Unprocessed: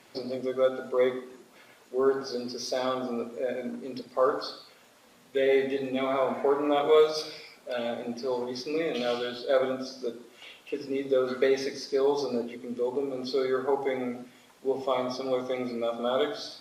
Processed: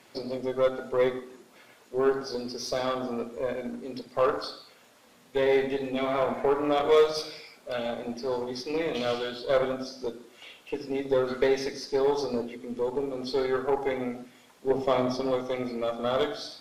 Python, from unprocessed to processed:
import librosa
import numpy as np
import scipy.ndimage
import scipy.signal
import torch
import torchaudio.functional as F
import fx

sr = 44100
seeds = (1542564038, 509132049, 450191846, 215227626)

y = fx.low_shelf(x, sr, hz=430.0, db=8.0, at=(14.7, 15.31))
y = fx.cheby_harmonics(y, sr, harmonics=(8,), levels_db=(-25,), full_scale_db=-9.5)